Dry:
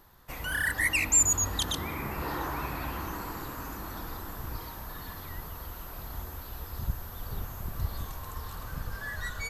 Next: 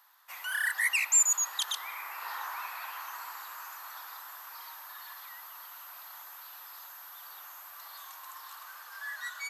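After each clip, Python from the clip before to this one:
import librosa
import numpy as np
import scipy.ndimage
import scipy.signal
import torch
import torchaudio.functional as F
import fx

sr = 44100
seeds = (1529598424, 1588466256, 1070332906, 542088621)

y = scipy.signal.sosfilt(scipy.signal.butter(4, 900.0, 'highpass', fs=sr, output='sos'), x)
y = y * 10.0 ** (-1.0 / 20.0)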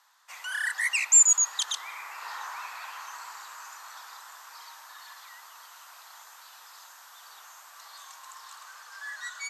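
y = fx.lowpass_res(x, sr, hz=7300.0, q=2.0)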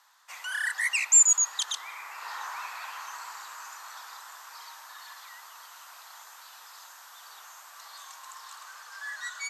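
y = fx.rider(x, sr, range_db=10, speed_s=2.0)
y = y * 10.0 ** (-1.5 / 20.0)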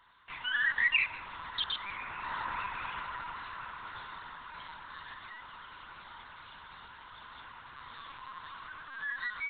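y = fx.lpc_vocoder(x, sr, seeds[0], excitation='pitch_kept', order=10)
y = y * 10.0 ** (1.0 / 20.0)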